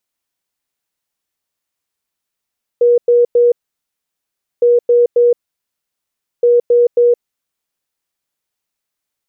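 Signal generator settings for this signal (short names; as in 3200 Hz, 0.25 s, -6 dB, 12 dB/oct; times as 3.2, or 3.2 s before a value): beep pattern sine 480 Hz, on 0.17 s, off 0.10 s, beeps 3, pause 1.10 s, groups 3, -6.5 dBFS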